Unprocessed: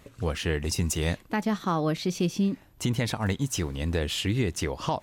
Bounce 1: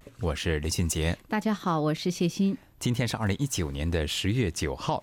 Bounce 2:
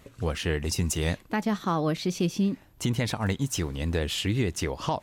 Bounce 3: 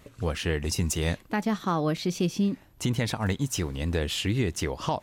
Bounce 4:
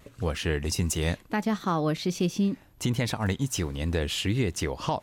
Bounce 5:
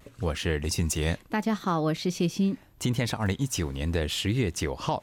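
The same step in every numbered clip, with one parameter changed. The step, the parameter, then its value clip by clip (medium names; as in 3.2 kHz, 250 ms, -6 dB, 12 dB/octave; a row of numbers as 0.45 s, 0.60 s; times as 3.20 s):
vibrato, rate: 0.37 Hz, 11 Hz, 4.2 Hz, 1.4 Hz, 0.77 Hz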